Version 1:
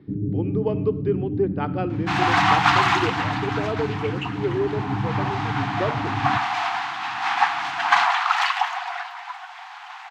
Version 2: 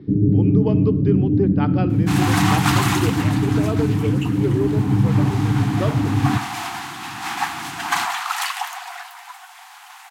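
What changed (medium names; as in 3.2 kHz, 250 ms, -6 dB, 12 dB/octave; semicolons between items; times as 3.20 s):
first sound +9.5 dB; second sound -5.5 dB; master: remove distance through air 200 m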